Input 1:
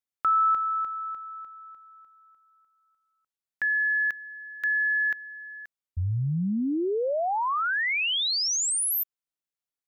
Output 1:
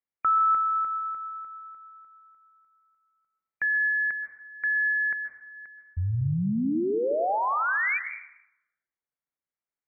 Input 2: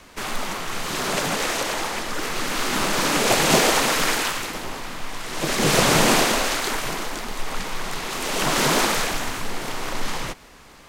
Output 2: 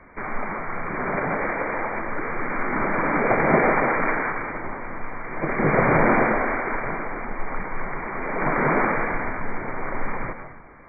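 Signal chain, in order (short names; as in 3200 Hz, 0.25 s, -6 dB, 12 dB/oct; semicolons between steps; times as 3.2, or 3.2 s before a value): brick-wall FIR low-pass 2400 Hz; plate-style reverb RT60 0.92 s, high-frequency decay 0.6×, pre-delay 0.115 s, DRR 8 dB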